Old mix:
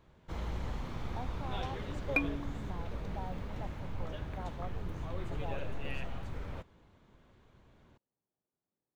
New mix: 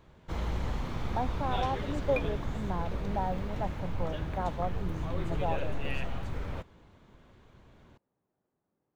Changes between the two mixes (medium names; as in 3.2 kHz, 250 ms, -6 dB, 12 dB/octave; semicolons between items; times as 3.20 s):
speech +11.5 dB; first sound +5.0 dB; second sound -6.5 dB